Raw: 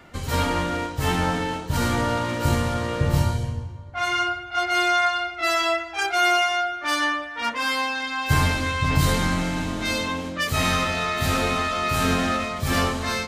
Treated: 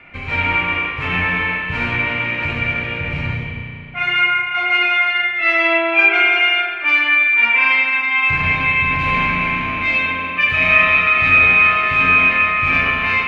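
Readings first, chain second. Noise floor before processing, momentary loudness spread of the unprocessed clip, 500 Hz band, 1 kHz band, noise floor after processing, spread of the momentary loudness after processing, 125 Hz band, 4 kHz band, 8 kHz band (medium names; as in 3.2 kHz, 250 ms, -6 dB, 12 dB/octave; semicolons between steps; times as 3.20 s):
-36 dBFS, 6 LU, 0.0 dB, +3.5 dB, -28 dBFS, 9 LU, -2.0 dB, +3.0 dB, under -20 dB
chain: peak limiter -13.5 dBFS, peak gain reduction 6 dB; resonant low-pass 2.4 kHz, resonance Q 11; spring tank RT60 2.5 s, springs 33 ms, chirp 55 ms, DRR -2.5 dB; trim -2 dB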